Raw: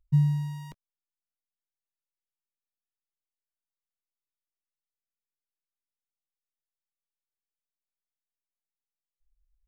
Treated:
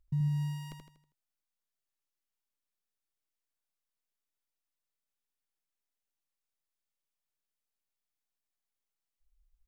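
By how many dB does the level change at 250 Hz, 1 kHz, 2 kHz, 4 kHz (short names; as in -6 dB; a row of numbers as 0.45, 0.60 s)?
-6.5, -4.0, -1.5, +1.0 dB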